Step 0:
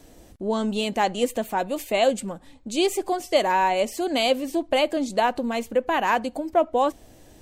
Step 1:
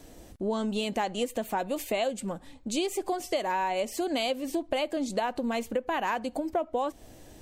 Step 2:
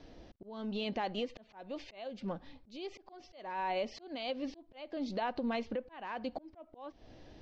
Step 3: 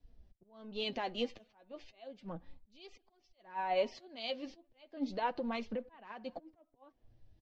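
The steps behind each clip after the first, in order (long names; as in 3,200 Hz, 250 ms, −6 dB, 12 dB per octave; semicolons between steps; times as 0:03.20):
downward compressor, threshold −26 dBFS, peak gain reduction 11.5 dB
Butterworth low-pass 5,300 Hz 48 dB per octave; brickwall limiter −22 dBFS, peak gain reduction 6 dB; volume swells 386 ms; level −4 dB
far-end echo of a speakerphone 220 ms, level −27 dB; flanger 0.34 Hz, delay 4 ms, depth 5.5 ms, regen +40%; multiband upward and downward expander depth 100%; level +1 dB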